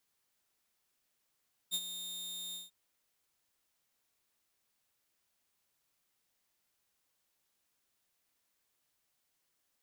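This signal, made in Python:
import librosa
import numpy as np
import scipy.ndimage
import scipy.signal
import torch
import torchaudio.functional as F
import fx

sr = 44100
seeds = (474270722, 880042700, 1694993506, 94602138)

y = fx.adsr_tone(sr, wave='saw', hz=3660.0, attack_ms=35.0, decay_ms=52.0, sustain_db=-10.5, held_s=0.83, release_ms=164.0, level_db=-27.5)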